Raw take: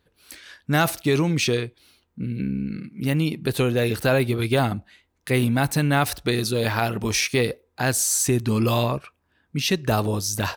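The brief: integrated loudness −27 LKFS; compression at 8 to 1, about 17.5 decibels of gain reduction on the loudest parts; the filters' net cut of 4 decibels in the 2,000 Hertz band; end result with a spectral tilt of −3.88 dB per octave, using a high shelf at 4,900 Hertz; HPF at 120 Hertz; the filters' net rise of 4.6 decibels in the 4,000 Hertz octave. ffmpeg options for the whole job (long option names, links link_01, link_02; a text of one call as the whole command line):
ffmpeg -i in.wav -af "highpass=120,equalizer=frequency=2000:width_type=o:gain=-8.5,equalizer=frequency=4000:width_type=o:gain=3.5,highshelf=frequency=4900:gain=9,acompressor=threshold=-31dB:ratio=8,volume=7.5dB" out.wav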